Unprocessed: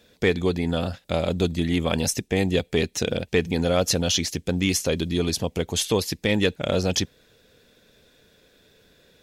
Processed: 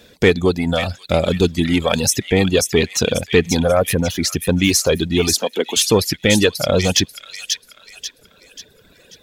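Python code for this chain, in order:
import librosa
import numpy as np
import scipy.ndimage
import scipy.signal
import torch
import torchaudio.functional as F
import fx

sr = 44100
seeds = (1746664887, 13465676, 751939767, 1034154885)

p1 = 10.0 ** (-23.0 / 20.0) * np.tanh(x / 10.0 ** (-23.0 / 20.0))
p2 = x + (p1 * 10.0 ** (-4.0 / 20.0))
p3 = fx.band_shelf(p2, sr, hz=4500.0, db=-16.0, octaves=1.7, at=(3.59, 4.23))
p4 = p3 + fx.echo_wet_highpass(p3, sr, ms=538, feedback_pct=41, hz=2100.0, wet_db=-4, dry=0)
p5 = fx.dereverb_blind(p4, sr, rt60_s=1.7)
p6 = fx.steep_highpass(p5, sr, hz=230.0, slope=36, at=(5.35, 5.77))
y = p6 * 10.0 ** (6.0 / 20.0)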